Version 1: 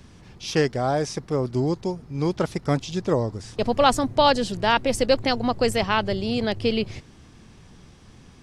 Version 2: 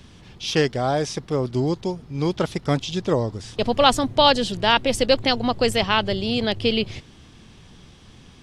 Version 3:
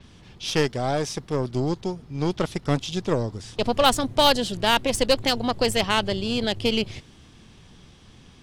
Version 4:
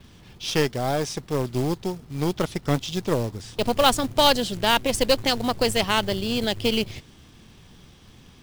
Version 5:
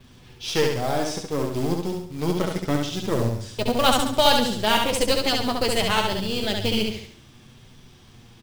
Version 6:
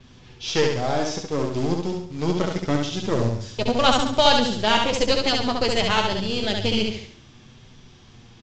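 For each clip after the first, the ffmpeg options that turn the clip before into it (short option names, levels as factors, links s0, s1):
-af "equalizer=f=3300:t=o:w=0.68:g=7,volume=1.12"
-af "aeval=exprs='0.891*(cos(1*acos(clip(val(0)/0.891,-1,1)))-cos(1*PI/2))+0.0562*(cos(8*acos(clip(val(0)/0.891,-1,1)))-cos(8*PI/2))':c=same,adynamicequalizer=threshold=0.0126:dfrequency=6900:dqfactor=0.7:tfrequency=6900:tqfactor=0.7:attack=5:release=100:ratio=0.375:range=2.5:mode=boostabove:tftype=highshelf,volume=0.75"
-af "acrusher=bits=4:mode=log:mix=0:aa=0.000001"
-af "flanger=delay=7.9:depth=3.5:regen=36:speed=0.26:shape=sinusoidal,aecho=1:1:69|138|207|276|345:0.668|0.281|0.118|0.0495|0.0208,volume=1.33"
-af "aresample=16000,aresample=44100,volume=1.12"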